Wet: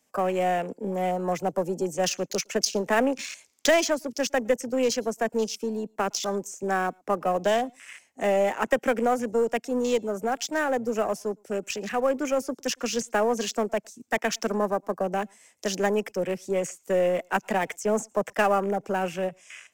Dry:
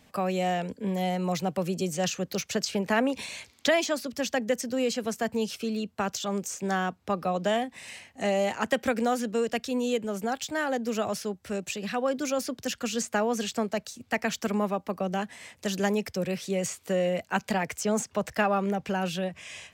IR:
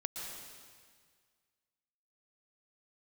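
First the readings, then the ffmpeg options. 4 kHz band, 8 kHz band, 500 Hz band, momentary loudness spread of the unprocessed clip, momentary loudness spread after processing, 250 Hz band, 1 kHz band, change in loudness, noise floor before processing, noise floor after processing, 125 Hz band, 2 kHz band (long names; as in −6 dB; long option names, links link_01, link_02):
+0.5 dB, +2.5 dB, +4.0 dB, 6 LU, 7 LU, −0.5 dB, +3.0 dB, +2.5 dB, −61 dBFS, −65 dBFS, can't be measured, +2.0 dB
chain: -filter_complex "[0:a]acrossover=split=270 6400:gain=0.141 1 0.224[link_01][link_02][link_03];[link_01][link_02][link_03]amix=inputs=3:normalize=0,afwtdn=0.01,lowshelf=frequency=490:gain=5.5,asplit=2[link_04][link_05];[link_05]aeval=exprs='clip(val(0),-1,0.0188)':channel_layout=same,volume=-10dB[link_06];[link_04][link_06]amix=inputs=2:normalize=0,aexciter=amount=6.7:drive=7.1:freq=5800,asplit=2[link_07][link_08];[1:a]atrim=start_sample=2205,afade=type=out:start_time=0.16:duration=0.01,atrim=end_sample=7497[link_09];[link_08][link_09]afir=irnorm=-1:irlink=0,volume=-10.5dB[link_10];[link_07][link_10]amix=inputs=2:normalize=0,volume=-1.5dB"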